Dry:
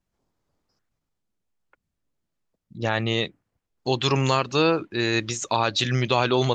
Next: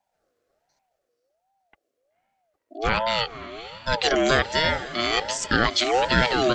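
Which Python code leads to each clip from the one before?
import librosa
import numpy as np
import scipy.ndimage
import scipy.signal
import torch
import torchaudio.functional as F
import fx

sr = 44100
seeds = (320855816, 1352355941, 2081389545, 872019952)

y = scipy.signal.sosfilt(scipy.signal.cheby1(4, 1.0, [260.0, 550.0], 'bandstop', fs=sr, output='sos'), x)
y = fx.echo_diffused(y, sr, ms=508, feedback_pct=45, wet_db=-14.0)
y = fx.ring_lfo(y, sr, carrier_hz=630.0, swing_pct=25, hz=1.3)
y = F.gain(torch.from_numpy(y), 5.5).numpy()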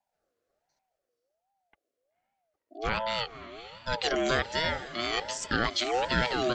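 y = fx.vibrato(x, sr, rate_hz=4.8, depth_cents=31.0)
y = F.gain(torch.from_numpy(y), -7.0).numpy()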